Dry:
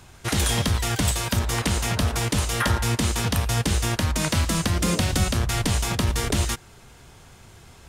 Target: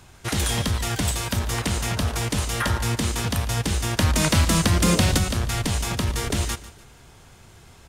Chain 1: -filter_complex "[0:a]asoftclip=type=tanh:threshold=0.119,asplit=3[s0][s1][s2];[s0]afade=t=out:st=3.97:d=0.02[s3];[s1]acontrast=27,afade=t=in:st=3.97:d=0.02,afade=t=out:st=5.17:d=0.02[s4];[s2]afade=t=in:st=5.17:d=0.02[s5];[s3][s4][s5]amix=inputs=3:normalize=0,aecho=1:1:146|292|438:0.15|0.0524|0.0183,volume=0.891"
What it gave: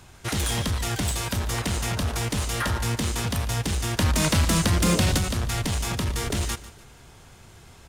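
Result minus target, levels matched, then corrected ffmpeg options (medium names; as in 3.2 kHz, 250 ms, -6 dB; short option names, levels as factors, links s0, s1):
saturation: distortion +16 dB
-filter_complex "[0:a]asoftclip=type=tanh:threshold=0.398,asplit=3[s0][s1][s2];[s0]afade=t=out:st=3.97:d=0.02[s3];[s1]acontrast=27,afade=t=in:st=3.97:d=0.02,afade=t=out:st=5.17:d=0.02[s4];[s2]afade=t=in:st=5.17:d=0.02[s5];[s3][s4][s5]amix=inputs=3:normalize=0,aecho=1:1:146|292|438:0.15|0.0524|0.0183,volume=0.891"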